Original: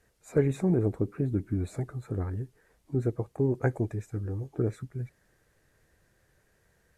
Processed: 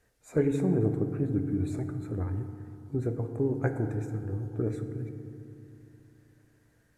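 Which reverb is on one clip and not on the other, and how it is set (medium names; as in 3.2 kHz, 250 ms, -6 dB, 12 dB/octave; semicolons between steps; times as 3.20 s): FDN reverb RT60 2.7 s, low-frequency decay 1.3×, high-frequency decay 0.35×, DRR 6.5 dB; trim -2 dB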